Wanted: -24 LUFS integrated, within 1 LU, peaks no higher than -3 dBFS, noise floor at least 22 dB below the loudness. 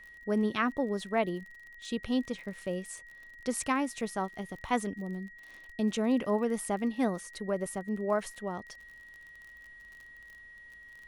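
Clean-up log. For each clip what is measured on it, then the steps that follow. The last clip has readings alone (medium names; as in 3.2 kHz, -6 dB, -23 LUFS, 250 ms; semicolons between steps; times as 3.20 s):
tick rate 39 per s; steady tone 1.9 kHz; tone level -49 dBFS; loudness -33.0 LUFS; peak level -14.5 dBFS; loudness target -24.0 LUFS
-> de-click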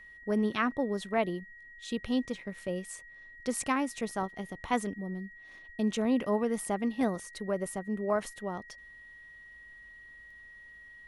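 tick rate 0.090 per s; steady tone 1.9 kHz; tone level -49 dBFS
-> band-stop 1.9 kHz, Q 30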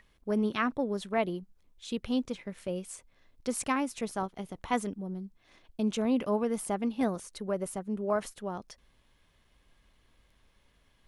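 steady tone not found; loudness -33.0 LUFS; peak level -14.5 dBFS; loudness target -24.0 LUFS
-> trim +9 dB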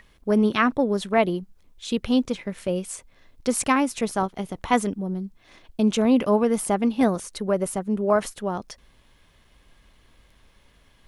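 loudness -24.0 LUFS; peak level -5.5 dBFS; noise floor -59 dBFS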